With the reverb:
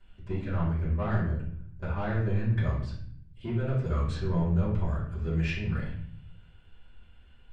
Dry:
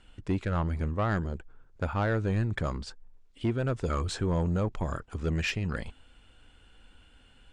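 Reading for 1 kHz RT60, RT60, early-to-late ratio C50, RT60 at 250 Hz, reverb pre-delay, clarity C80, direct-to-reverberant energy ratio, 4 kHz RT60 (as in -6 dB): 0.50 s, 0.55 s, 3.5 dB, 1.1 s, 3 ms, 8.0 dB, -12.0 dB, 0.50 s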